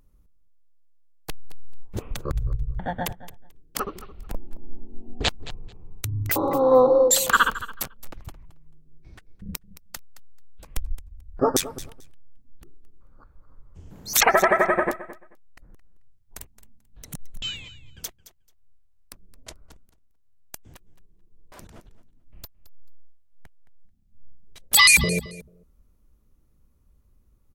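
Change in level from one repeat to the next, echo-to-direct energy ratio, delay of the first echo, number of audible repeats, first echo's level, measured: −15.5 dB, −16.0 dB, 219 ms, 2, −16.0 dB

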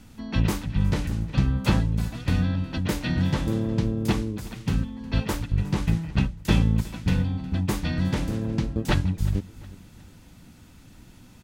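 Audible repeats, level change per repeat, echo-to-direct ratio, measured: 2, −8.0 dB, −19.5 dB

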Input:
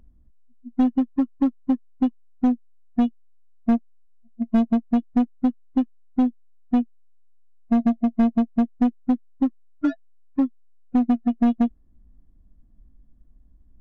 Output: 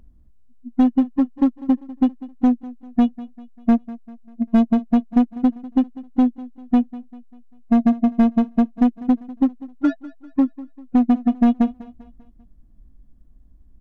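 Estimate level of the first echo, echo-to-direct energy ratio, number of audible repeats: −18.0 dB, −17.0 dB, 3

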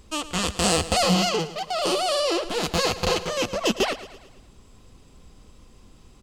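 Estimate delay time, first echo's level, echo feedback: 111 ms, −15.0 dB, 50%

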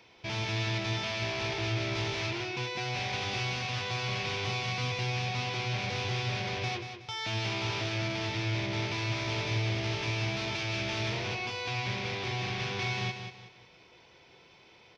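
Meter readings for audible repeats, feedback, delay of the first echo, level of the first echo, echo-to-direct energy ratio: 3, 33%, 185 ms, −8.0 dB, −7.5 dB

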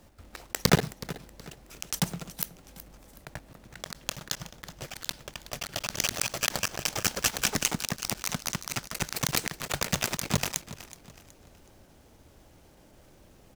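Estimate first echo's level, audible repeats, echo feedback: −16.0 dB, 3, 36%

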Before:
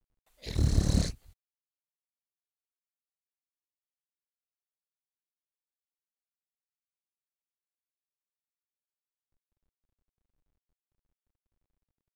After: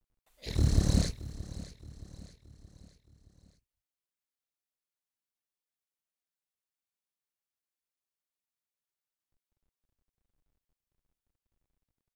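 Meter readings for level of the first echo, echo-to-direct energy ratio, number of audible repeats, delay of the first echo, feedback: −16.0 dB, −15.0 dB, 3, 622 ms, 46%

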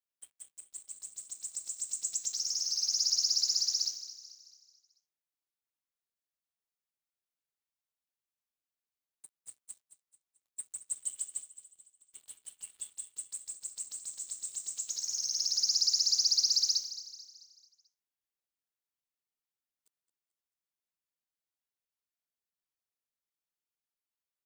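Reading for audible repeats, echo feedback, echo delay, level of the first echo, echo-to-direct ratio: 4, 47%, 219 ms, −13.5 dB, −12.5 dB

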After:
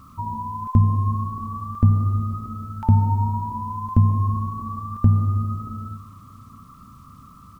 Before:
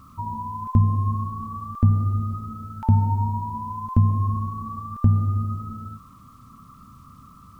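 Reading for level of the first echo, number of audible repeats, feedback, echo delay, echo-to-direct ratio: −21.0 dB, 2, 30%, 630 ms, −20.5 dB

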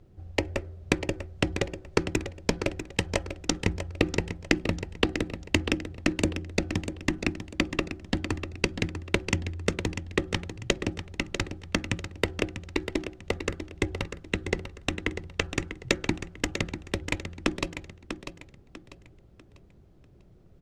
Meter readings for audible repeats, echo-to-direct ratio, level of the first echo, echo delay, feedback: 3, −9.0 dB, −9.5 dB, 645 ms, 32%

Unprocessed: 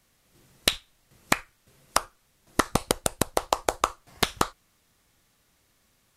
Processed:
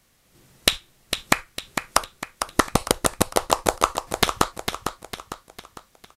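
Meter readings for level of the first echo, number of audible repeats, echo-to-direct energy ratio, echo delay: −7.5 dB, 4, −6.5 dB, 453 ms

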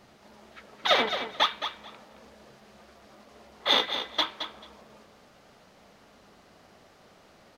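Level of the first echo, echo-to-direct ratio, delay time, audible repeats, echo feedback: −9.0 dB, −9.0 dB, 219 ms, 2, 16%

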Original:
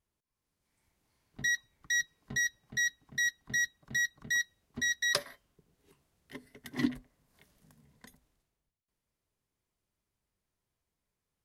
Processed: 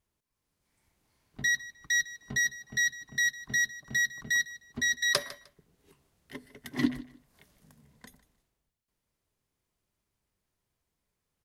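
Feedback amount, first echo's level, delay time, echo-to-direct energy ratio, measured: 21%, −18.0 dB, 153 ms, −18.0 dB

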